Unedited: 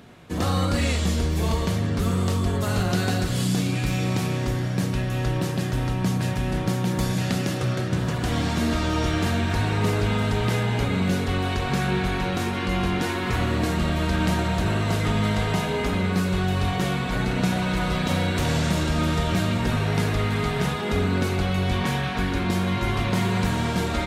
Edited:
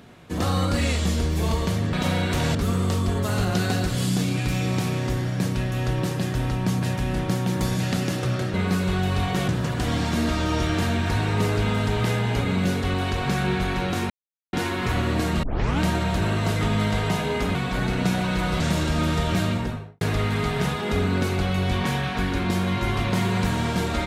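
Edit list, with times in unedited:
0:12.54–0:12.97: silence
0:13.87: tape start 0.37 s
0:15.99–0:16.93: move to 0:07.92
0:17.98–0:18.60: move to 0:01.93
0:19.44–0:20.01: fade out and dull

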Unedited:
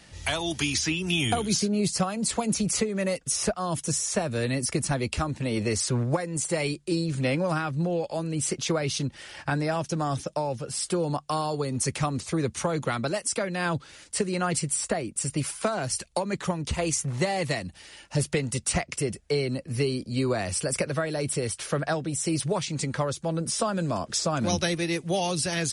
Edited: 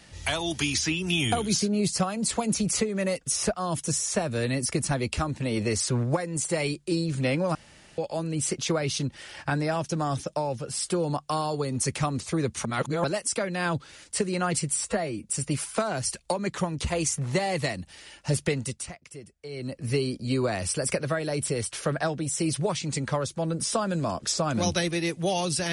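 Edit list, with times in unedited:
0:07.55–0:07.98: fill with room tone
0:12.65–0:13.04: reverse
0:14.87–0:15.14: time-stretch 1.5×
0:18.43–0:19.68: duck −15 dB, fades 0.33 s linear

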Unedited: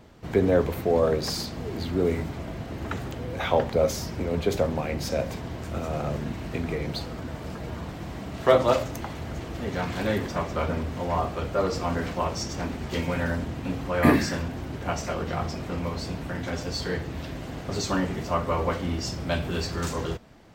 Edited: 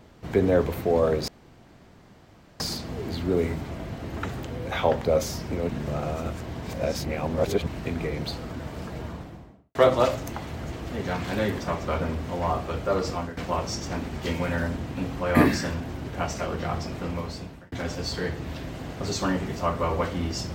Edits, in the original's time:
0:01.28: splice in room tone 1.32 s
0:04.37–0:06.35: reverse
0:07.62–0:08.43: fade out and dull
0:11.79–0:12.05: fade out, to −16 dB
0:15.61–0:16.40: fade out equal-power

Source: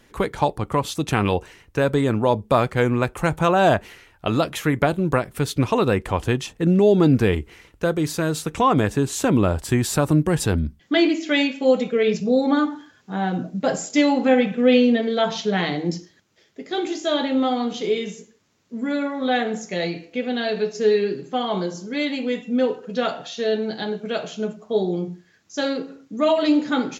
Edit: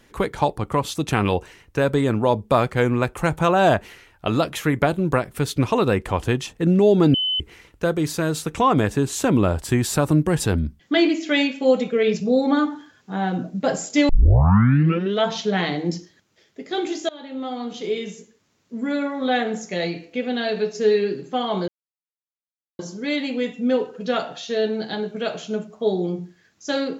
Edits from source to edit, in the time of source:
0:07.14–0:07.40: beep over 3,030 Hz −19.5 dBFS
0:14.09: tape start 1.15 s
0:17.09–0:18.78: fade in equal-power, from −24 dB
0:21.68: splice in silence 1.11 s

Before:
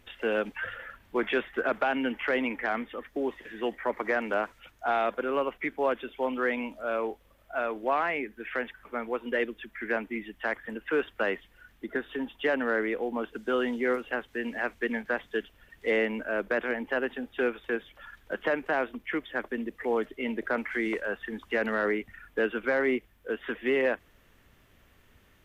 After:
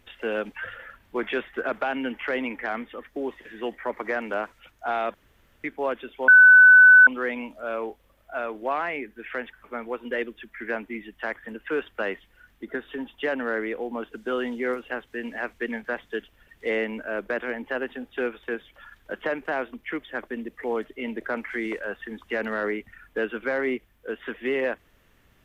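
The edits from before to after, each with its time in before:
0:05.14–0:05.64: fill with room tone
0:06.28: insert tone 1,500 Hz −8 dBFS 0.79 s

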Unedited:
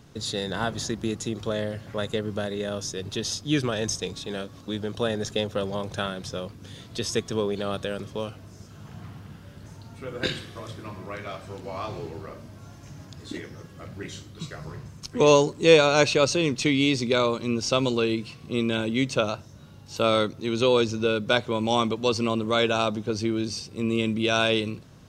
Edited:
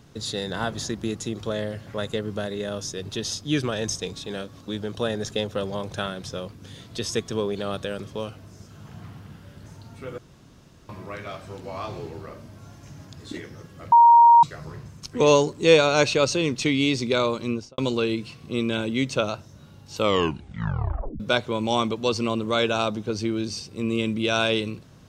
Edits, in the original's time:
0:10.18–0:10.89: fill with room tone
0:13.92–0:14.43: beep over 938 Hz −9 dBFS
0:17.47–0:17.78: fade out and dull
0:19.98: tape stop 1.22 s

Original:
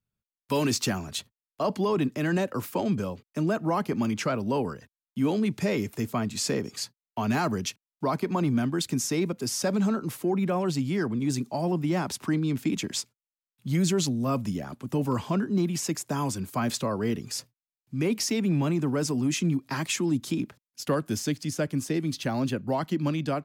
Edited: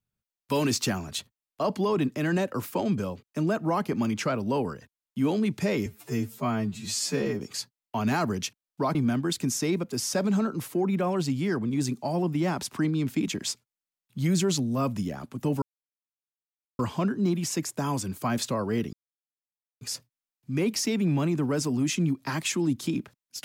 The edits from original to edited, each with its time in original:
0:05.86–0:06.63: time-stretch 2×
0:08.18–0:08.44: remove
0:15.11: splice in silence 1.17 s
0:17.25: splice in silence 0.88 s

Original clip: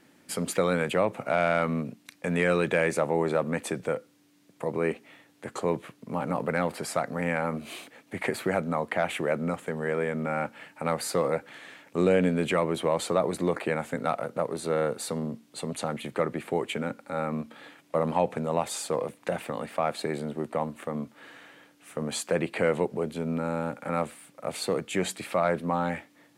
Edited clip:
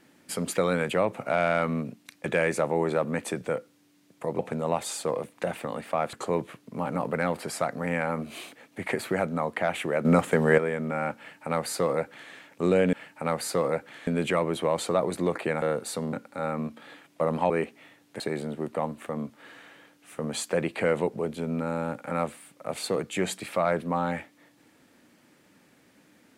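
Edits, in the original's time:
0:02.26–0:02.65: remove
0:04.78–0:05.48: swap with 0:18.24–0:19.98
0:09.40–0:09.93: clip gain +9.5 dB
0:10.53–0:11.67: duplicate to 0:12.28
0:13.83–0:14.76: remove
0:15.27–0:16.87: remove

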